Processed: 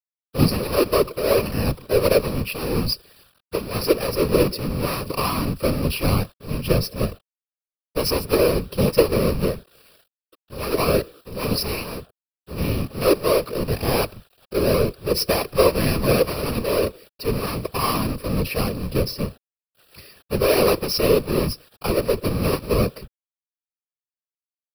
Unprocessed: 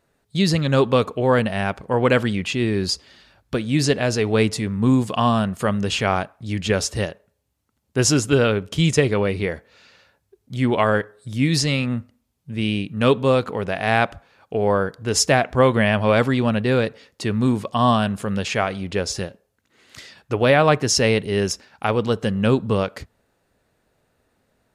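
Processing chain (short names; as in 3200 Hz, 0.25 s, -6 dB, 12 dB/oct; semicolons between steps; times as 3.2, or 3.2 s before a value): half-waves squared off; ripple EQ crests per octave 0.86, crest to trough 17 dB; bit-crush 7-bit; fixed phaser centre 1400 Hz, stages 8; whisperiser; gain -5.5 dB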